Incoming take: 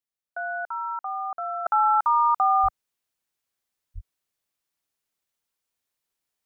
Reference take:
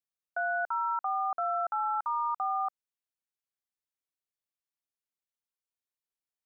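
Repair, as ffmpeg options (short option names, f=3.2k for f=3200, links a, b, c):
-filter_complex "[0:a]asplit=3[a][b][c];[a]afade=t=out:st=2.62:d=0.02[d];[b]highpass=f=140:w=0.5412,highpass=f=140:w=1.3066,afade=t=in:st=2.62:d=0.02,afade=t=out:st=2.74:d=0.02[e];[c]afade=t=in:st=2.74:d=0.02[f];[d][e][f]amix=inputs=3:normalize=0,asplit=3[g][h][i];[g]afade=t=out:st=3.94:d=0.02[j];[h]highpass=f=140:w=0.5412,highpass=f=140:w=1.3066,afade=t=in:st=3.94:d=0.02,afade=t=out:st=4.06:d=0.02[k];[i]afade=t=in:st=4.06:d=0.02[l];[j][k][l]amix=inputs=3:normalize=0,asetnsamples=n=441:p=0,asendcmd='1.66 volume volume -10.5dB',volume=0dB"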